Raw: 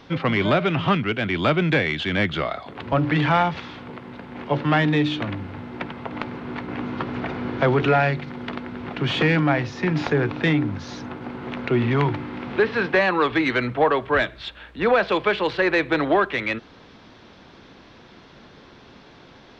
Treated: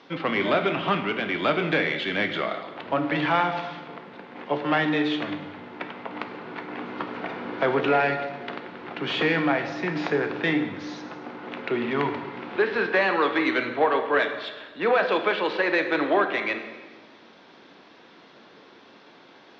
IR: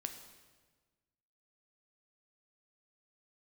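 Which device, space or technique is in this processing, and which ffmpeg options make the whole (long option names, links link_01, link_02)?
supermarket ceiling speaker: -filter_complex "[0:a]highpass=270,lowpass=5700[link_01];[1:a]atrim=start_sample=2205[link_02];[link_01][link_02]afir=irnorm=-1:irlink=0"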